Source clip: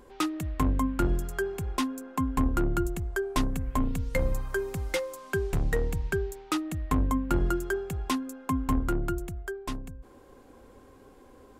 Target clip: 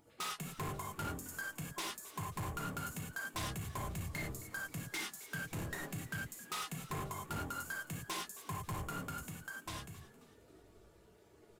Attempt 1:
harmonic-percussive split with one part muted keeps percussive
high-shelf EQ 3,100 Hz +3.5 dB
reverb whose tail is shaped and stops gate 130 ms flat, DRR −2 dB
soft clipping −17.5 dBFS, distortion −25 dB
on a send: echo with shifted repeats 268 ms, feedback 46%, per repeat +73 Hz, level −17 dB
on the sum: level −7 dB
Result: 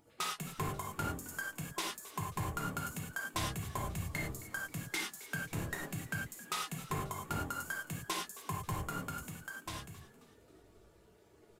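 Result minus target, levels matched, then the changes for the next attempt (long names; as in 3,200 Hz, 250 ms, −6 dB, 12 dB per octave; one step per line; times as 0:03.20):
soft clipping: distortion −13 dB
change: soft clipping −28 dBFS, distortion −11 dB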